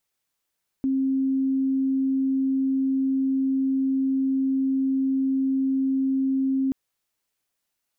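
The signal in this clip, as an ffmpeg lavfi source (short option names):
-f lavfi -i "aevalsrc='0.1*sin(2*PI*267*t)':d=5.88:s=44100"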